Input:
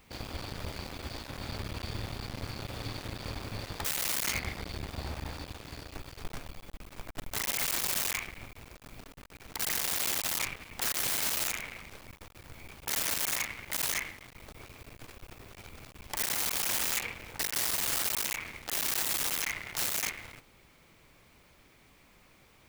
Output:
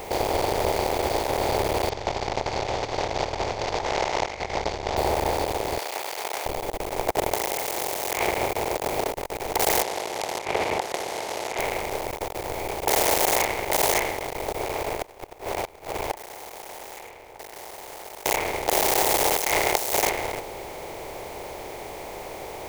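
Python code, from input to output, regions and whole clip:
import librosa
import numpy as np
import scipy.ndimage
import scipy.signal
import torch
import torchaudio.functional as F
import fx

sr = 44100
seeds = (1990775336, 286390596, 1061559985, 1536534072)

y = fx.chain(x, sr, fx.cvsd(bps=32000),
    fx.peak_eq(hz=380.0, db=-7.5, octaves=1.5),
    fx.over_compress(threshold_db=-43.0, ratio=-0.5), at=(1.89, 4.97))
y = fx.chain(y, sr, fx.highpass(hz=1300.0, slope=12),
    fx.env_flatten(amount_pct=50), at=(5.78, 6.46))
y = fx.chain(y, sr, fx.highpass(hz=130.0, slope=6),
    fx.over_compress(threshold_db=-41.0, ratio=-1.0), at=(7.08, 9.11))
y = fx.chain(y, sr, fx.bandpass_edges(low_hz=130.0, high_hz=5300.0),
    fx.over_compress(threshold_db=-44.0, ratio=-0.5), at=(9.82, 11.59))
y = fx.chain(y, sr, fx.peak_eq(hz=1400.0, db=6.0, octaves=2.4),
    fx.echo_single(ms=104, db=-11.0),
    fx.gate_flip(shuts_db=-33.0, range_db=-34), at=(14.66, 18.26))
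y = fx.chain(y, sr, fx.bass_treble(bass_db=-5, treble_db=9),
    fx.over_compress(threshold_db=-35.0, ratio=-1.0), at=(19.37, 19.93))
y = fx.bin_compress(y, sr, power=0.6)
y = fx.band_shelf(y, sr, hz=570.0, db=15.5, octaves=1.7)
y = y * librosa.db_to_amplitude(4.0)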